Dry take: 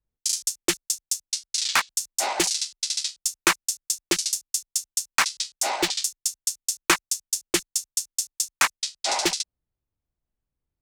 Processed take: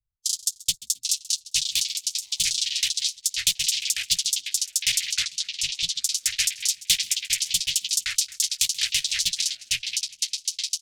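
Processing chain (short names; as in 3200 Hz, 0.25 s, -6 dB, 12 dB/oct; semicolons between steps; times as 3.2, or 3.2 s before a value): Wiener smoothing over 15 samples; elliptic band-stop 130–3300 Hz, stop band 40 dB; dynamic EQ 3600 Hz, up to +4 dB, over -43 dBFS, Q 1.4; harmonic-percussive split percussive +5 dB; on a send: frequency-shifting echo 0.133 s, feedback 39%, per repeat +53 Hz, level -19.5 dB; 1.88–2.32 on the sum: compressor 2.5:1, threshold -29 dBFS, peak gain reduction 9.5 dB; echoes that change speed 0.742 s, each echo -3 st, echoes 3; 5.13–6.04 air absorption 52 m; gain -3 dB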